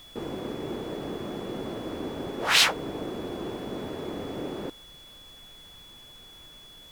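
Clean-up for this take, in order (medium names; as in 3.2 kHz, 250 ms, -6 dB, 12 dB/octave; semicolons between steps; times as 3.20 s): band-stop 3.4 kHz, Q 30; noise print and reduce 30 dB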